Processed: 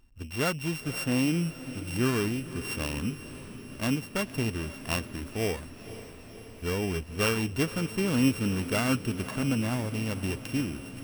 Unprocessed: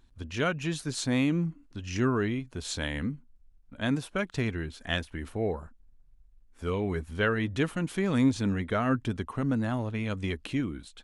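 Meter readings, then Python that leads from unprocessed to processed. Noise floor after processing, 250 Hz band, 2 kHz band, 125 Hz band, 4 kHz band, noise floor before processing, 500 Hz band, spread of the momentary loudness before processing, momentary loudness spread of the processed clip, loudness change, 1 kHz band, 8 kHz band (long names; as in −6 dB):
−46 dBFS, 0.0 dB, 0.0 dB, +0.5 dB, +2.5 dB, −59 dBFS, −0.5 dB, 9 LU, 13 LU, +0.5 dB, −1.0 dB, +5.0 dB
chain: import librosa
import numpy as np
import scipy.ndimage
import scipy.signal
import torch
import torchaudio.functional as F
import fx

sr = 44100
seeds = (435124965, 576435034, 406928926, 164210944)

y = np.r_[np.sort(x[:len(x) // 16 * 16].reshape(-1, 16), axis=1).ravel(), x[len(x) // 16 * 16:]]
y = fx.echo_diffused(y, sr, ms=515, feedback_pct=68, wet_db=-14.0)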